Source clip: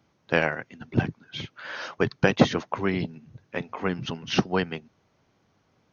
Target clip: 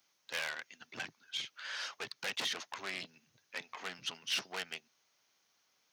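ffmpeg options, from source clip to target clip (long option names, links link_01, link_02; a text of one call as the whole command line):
ffmpeg -i in.wav -filter_complex "[0:a]aeval=exprs='(tanh(20*val(0)+0.5)-tanh(0.5))/20':channel_layout=same,acrossover=split=4700[link_01][link_02];[link_02]acompressor=threshold=-52dB:ratio=4:attack=1:release=60[link_03];[link_01][link_03]amix=inputs=2:normalize=0,aderivative,volume=8.5dB" out.wav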